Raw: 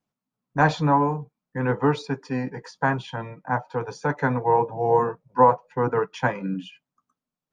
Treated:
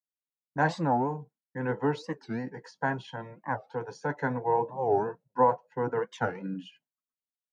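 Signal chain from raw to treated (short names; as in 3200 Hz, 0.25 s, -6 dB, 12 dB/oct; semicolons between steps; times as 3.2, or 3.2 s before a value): gate with hold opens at -43 dBFS; notch comb 1200 Hz; record warp 45 rpm, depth 250 cents; gain -6 dB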